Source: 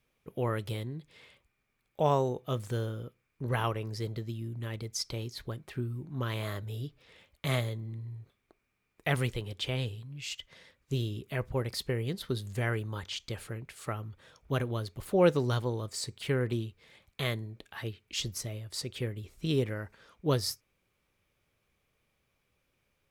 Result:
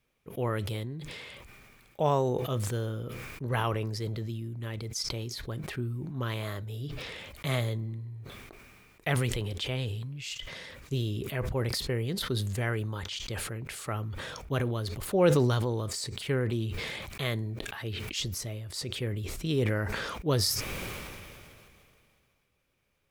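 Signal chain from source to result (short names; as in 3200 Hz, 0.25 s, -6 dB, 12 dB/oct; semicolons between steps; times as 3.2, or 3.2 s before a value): sustainer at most 24 dB/s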